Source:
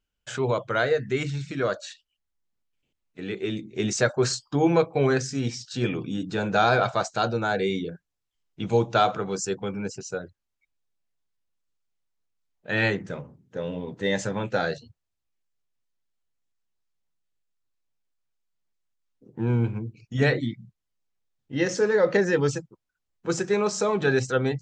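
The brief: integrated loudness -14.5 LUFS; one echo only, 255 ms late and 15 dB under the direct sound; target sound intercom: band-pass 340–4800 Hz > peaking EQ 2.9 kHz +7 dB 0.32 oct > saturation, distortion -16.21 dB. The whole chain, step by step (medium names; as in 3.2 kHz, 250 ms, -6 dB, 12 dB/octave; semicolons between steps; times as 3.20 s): band-pass 340–4800 Hz; peaking EQ 2.9 kHz +7 dB 0.32 oct; delay 255 ms -15 dB; saturation -16 dBFS; trim +14.5 dB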